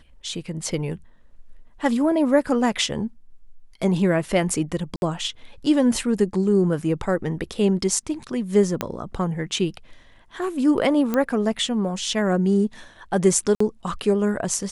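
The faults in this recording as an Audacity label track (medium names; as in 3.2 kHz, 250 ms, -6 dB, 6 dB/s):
4.960000	5.020000	dropout 61 ms
8.810000	8.810000	pop -8 dBFS
11.140000	11.140000	pop -10 dBFS
13.550000	13.600000	dropout 54 ms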